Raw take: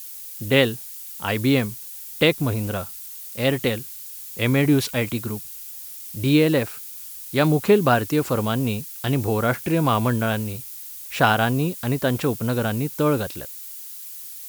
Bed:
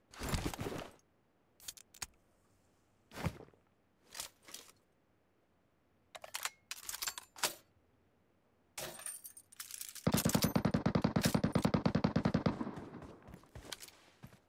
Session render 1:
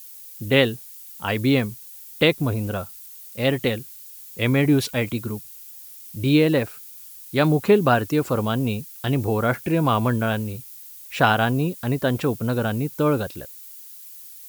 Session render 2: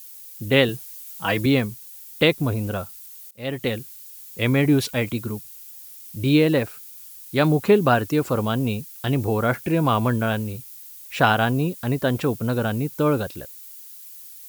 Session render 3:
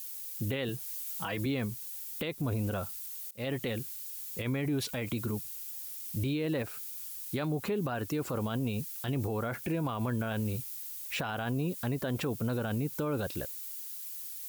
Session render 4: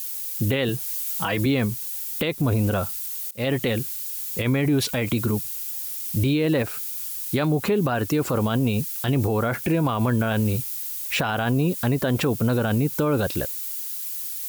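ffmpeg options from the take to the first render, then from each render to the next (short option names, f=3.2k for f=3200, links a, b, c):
-af "afftdn=nr=6:nf=-37"
-filter_complex "[0:a]asettb=1/sr,asplit=3[a][b][c];[a]atrim=end=0.684[d];[b]atrim=start=0.68:end=1.46,asetpts=PTS-STARTPTS,afade=t=in:d=0.004:c=qsin,afade=t=out:st=0.776:d=0.004:c=qsin,aecho=1:1:6.2:0.87,atrim=end_sample=34398[e];[c]atrim=start=1.456[f];[d][e]acrossfade=d=0.004:c1=hsin:c2=qsin[g];[g][f]acrossfade=d=0.004:c1=qsin:c2=hsin,asplit=2[h][i];[h]atrim=end=3.31,asetpts=PTS-STARTPTS,afade=t=out:st=3.306:d=0.004:c=hsin:silence=0.0891251[j];[i]atrim=start=3.31,asetpts=PTS-STARTPTS,afade=t=in:d=0.48:silence=0.0891251[k];[j][k]concat=n=2:v=0:a=1"
-af "acompressor=threshold=-26dB:ratio=3,alimiter=level_in=0.5dB:limit=-24dB:level=0:latency=1:release=40,volume=-0.5dB"
-af "volume=10.5dB"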